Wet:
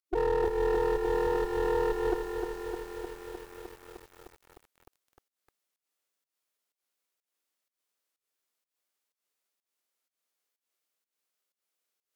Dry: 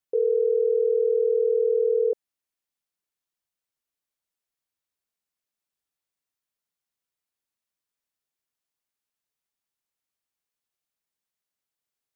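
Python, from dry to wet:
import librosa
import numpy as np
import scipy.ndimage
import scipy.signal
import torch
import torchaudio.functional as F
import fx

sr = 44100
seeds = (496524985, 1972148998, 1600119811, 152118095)

y = scipy.signal.sosfilt(scipy.signal.butter(2, 300.0, 'highpass', fs=sr, output='sos'), x)
y = fx.formant_shift(y, sr, semitones=-5)
y = fx.volume_shaper(y, sr, bpm=125, per_beat=1, depth_db=-22, release_ms=194.0, shape='fast start')
y = fx.clip_asym(y, sr, top_db=-44.0, bottom_db=-22.0)
y = fx.echo_crushed(y, sr, ms=305, feedback_pct=80, bits=9, wet_db=-6.0)
y = y * librosa.db_to_amplitude(4.0)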